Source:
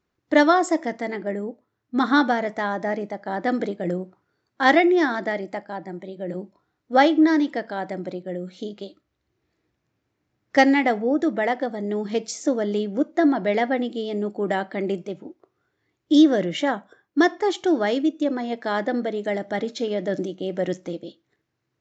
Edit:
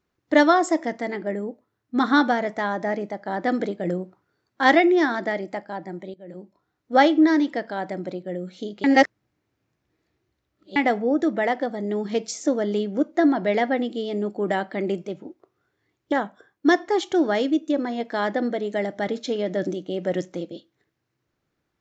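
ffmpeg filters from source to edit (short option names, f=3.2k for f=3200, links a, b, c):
-filter_complex "[0:a]asplit=5[a][b][c][d][e];[a]atrim=end=6.14,asetpts=PTS-STARTPTS,afade=t=out:st=6.136:d=0.004:c=hsin:silence=0.158489[f];[b]atrim=start=6.14:end=8.842,asetpts=PTS-STARTPTS,afade=t=in:d=0.79:silence=0.158489[g];[c]atrim=start=8.838:end=10.762,asetpts=PTS-STARTPTS,areverse[h];[d]atrim=start=10.758:end=16.122[i];[e]atrim=start=16.638[j];[f][g]concat=n=2:v=0:a=1[k];[k][h]acrossfade=d=0.004:c1=hsin:c2=hsin[l];[l][i]acrossfade=d=0.004:c1=hsin:c2=hsin[m];[m][j]acrossfade=d=0.004:c1=hsin:c2=hsin"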